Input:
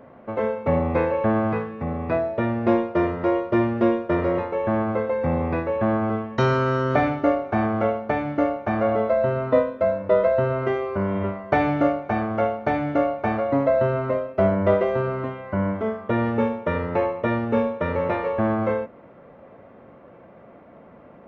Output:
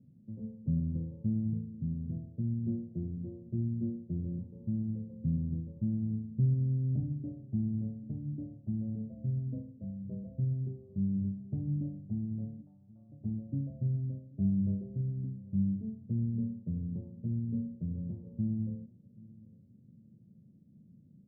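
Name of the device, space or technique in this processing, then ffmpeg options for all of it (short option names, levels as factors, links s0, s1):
the neighbour's flat through the wall: -filter_complex "[0:a]asettb=1/sr,asplit=3[s0][s1][s2];[s0]atrim=end=12.624[s3];[s1]atrim=start=12.62:end=13.12,asetpts=PTS-STARTPTS,afade=t=in:d=0.004:c=qsin,afade=t=out:st=0.496:d=0.004:c=qsin,highpass=f=830:w=0.5412,highpass=f=830:w=1.3066[s4];[s2]atrim=start=13.116[s5];[s3][s4]acrossfade=d=0.004:c1=hsin:c2=qsin[s6];[s6][s5]acrossfade=d=0.004:c1=qsin:c2=hsin,highpass=99,lowpass=f=150:w=0.5412,lowpass=f=150:w=1.3066,aemphasis=mode=production:type=bsi,equalizer=f=200:t=o:w=0.56:g=3.5,asplit=2[s7][s8];[s8]adelay=784,lowpass=f=2000:p=1,volume=0.0841,asplit=2[s9][s10];[s10]adelay=784,lowpass=f=2000:p=1,volume=0.39,asplit=2[s11][s12];[s12]adelay=784,lowpass=f=2000:p=1,volume=0.39[s13];[s7][s9][s11][s13]amix=inputs=4:normalize=0,volume=2.51"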